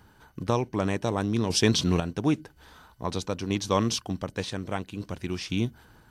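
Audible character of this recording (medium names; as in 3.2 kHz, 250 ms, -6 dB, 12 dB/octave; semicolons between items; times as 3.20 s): random-step tremolo 2 Hz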